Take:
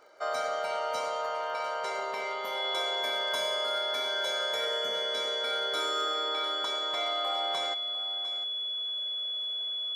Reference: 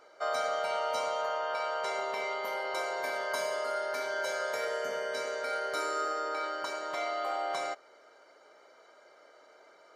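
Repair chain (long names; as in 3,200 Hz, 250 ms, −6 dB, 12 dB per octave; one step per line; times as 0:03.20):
clipped peaks rebuilt −23 dBFS
click removal
notch filter 3,400 Hz, Q 30
echo removal 702 ms −14 dB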